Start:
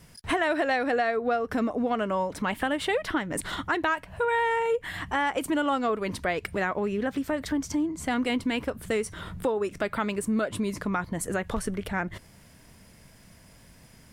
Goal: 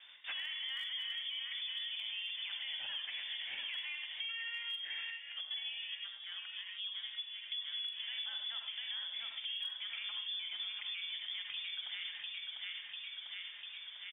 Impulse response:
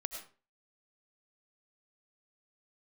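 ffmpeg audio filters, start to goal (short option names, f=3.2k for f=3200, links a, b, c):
-filter_complex "[0:a]acrossover=split=180 2200:gain=0.1 1 0.126[a][b][c];[a][b][c]amix=inputs=3:normalize=0,aecho=1:1:697|1394|2091|2788|3485|4182:0.398|0.207|0.108|0.056|0.0291|0.0151,alimiter=limit=-23dB:level=0:latency=1:release=17,asettb=1/sr,asplit=3[d][e][f];[d]atrim=end=5.104[g];[e]atrim=start=5.1:end=7.52,asetpts=PTS-STARTPTS,afade=t=in:d=0.004:c=qsin,afade=t=out:st=2.416:d=0.004:c=qsin,agate=range=-16dB:threshold=-29dB:ratio=16:detection=peak[h];[f]atrim=start=7.516[i];[g][h]acrossfade=d=0.004:c1=hsin:c2=qsin[j];[j][i]acrossfade=d=0.004:c1=qsin:c2=hsin[k];[1:a]atrim=start_sample=2205,asetrate=61740,aresample=44100[l];[k][l]afir=irnorm=-1:irlink=0,lowpass=f=3.1k:t=q:w=0.5098,lowpass=f=3.1k:t=q:w=0.6013,lowpass=f=3.1k:t=q:w=0.9,lowpass=f=3.1k:t=q:w=2.563,afreqshift=-3700,asoftclip=type=hard:threshold=-25.5dB,asplit=2[m][n];[n]adelay=44,volume=-12.5dB[o];[m][o]amix=inputs=2:normalize=0,acompressor=threshold=-51dB:ratio=3,volume=7dB"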